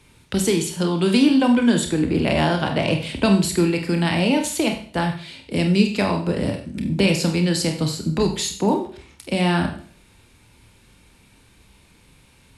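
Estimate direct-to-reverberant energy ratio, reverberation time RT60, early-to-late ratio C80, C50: 3.5 dB, 0.50 s, 12.0 dB, 9.0 dB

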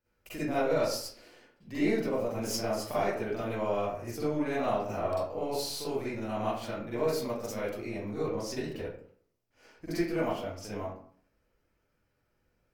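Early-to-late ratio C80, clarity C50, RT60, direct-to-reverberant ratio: 4.0 dB, -3.5 dB, 0.55 s, -11.0 dB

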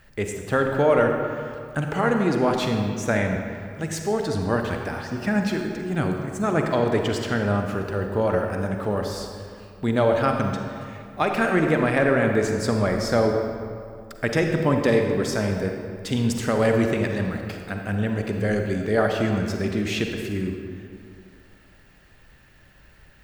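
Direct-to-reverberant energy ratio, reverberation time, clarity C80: 3.0 dB, 2.3 s, 4.5 dB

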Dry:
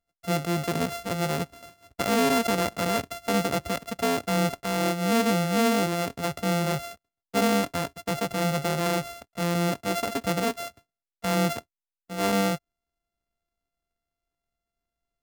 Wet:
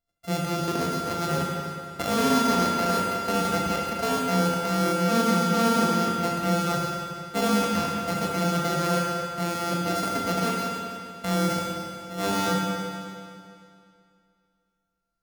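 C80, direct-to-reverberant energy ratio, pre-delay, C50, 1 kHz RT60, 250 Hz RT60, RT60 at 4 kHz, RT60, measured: 1.5 dB, -2.0 dB, 22 ms, -0.5 dB, 2.4 s, 2.4 s, 2.3 s, 2.4 s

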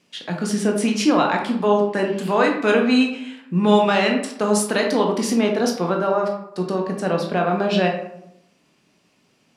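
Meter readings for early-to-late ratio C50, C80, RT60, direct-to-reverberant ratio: 5.5 dB, 9.0 dB, 0.80 s, 1.0 dB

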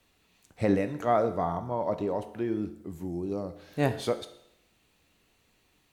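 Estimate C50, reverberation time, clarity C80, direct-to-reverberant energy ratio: 12.5 dB, 0.75 s, 15.0 dB, 8.5 dB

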